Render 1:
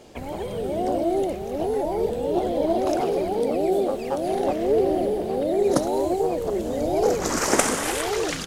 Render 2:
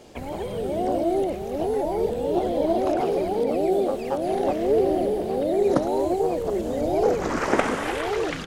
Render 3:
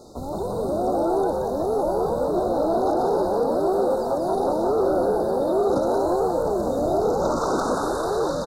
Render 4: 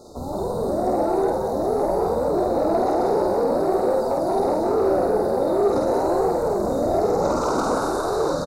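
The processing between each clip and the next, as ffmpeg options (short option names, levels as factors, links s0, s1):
-filter_complex "[0:a]acrossover=split=3400[s0][s1];[s1]acompressor=threshold=0.00501:ratio=4:attack=1:release=60[s2];[s0][s2]amix=inputs=2:normalize=0"
-filter_complex "[0:a]asoftclip=type=tanh:threshold=0.1,afftfilt=real='re*(1-between(b*sr/4096,1400,3600))':imag='im*(1-between(b*sr/4096,1400,3600))':win_size=4096:overlap=0.75,asplit=5[s0][s1][s2][s3][s4];[s1]adelay=178,afreqshift=130,volume=0.631[s5];[s2]adelay=356,afreqshift=260,volume=0.221[s6];[s3]adelay=534,afreqshift=390,volume=0.0776[s7];[s4]adelay=712,afreqshift=520,volume=0.0269[s8];[s0][s5][s6][s7][s8]amix=inputs=5:normalize=0,volume=1.33"
-filter_complex "[0:a]asoftclip=type=tanh:threshold=0.237,asplit=2[s0][s1];[s1]adelay=49,volume=0.75[s2];[s0][s2]amix=inputs=2:normalize=0"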